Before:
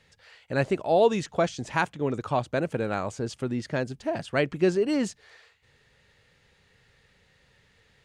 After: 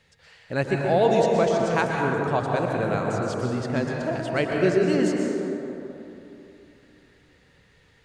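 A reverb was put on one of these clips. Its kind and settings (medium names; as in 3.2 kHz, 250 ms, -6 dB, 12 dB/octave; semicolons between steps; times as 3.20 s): plate-style reverb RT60 3.1 s, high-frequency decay 0.35×, pre-delay 105 ms, DRR -0.5 dB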